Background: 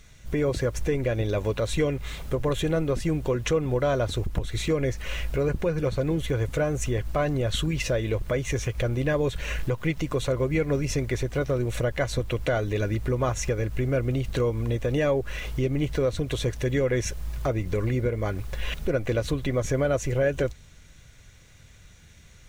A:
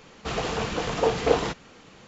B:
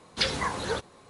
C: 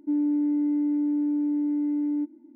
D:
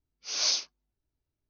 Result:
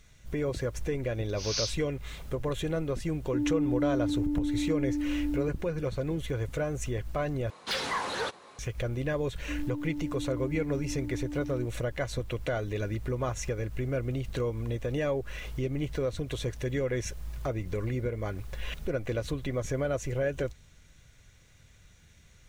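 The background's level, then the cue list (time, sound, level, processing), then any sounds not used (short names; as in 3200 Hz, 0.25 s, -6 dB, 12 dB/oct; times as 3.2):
background -6 dB
1.11 add D -5.5 dB + HPF 1300 Hz
3.26 add C -5 dB
7.5 replace with B -10 dB + overdrive pedal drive 21 dB, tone 4100 Hz, clips at -11.5 dBFS
9.41 add C -17.5 dB + bell 750 Hz +9.5 dB 3 oct
not used: A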